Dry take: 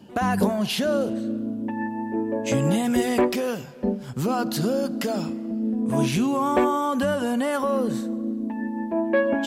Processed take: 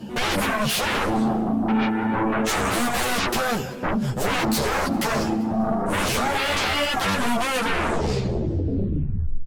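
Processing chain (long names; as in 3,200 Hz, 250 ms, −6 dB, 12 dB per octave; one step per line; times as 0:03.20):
turntable brake at the end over 2.15 s
low-shelf EQ 100 Hz +7 dB
sine wavefolder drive 18 dB, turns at −8.5 dBFS
on a send: repeating echo 196 ms, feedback 42%, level −21 dB
on the sum: string-ensemble chorus
level −8.5 dB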